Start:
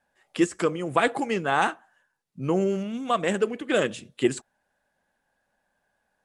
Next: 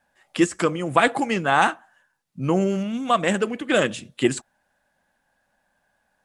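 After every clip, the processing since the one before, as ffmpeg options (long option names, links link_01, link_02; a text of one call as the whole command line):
ffmpeg -i in.wav -af "equalizer=frequency=420:width=3.2:gain=-6,volume=5dB" out.wav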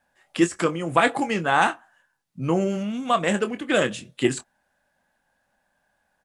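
ffmpeg -i in.wav -filter_complex "[0:a]asplit=2[link_01][link_02];[link_02]adelay=24,volume=-10dB[link_03];[link_01][link_03]amix=inputs=2:normalize=0,volume=-1.5dB" out.wav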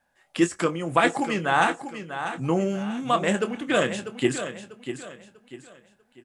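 ffmpeg -i in.wav -af "aecho=1:1:644|1288|1932|2576:0.316|0.108|0.0366|0.0124,volume=-1.5dB" out.wav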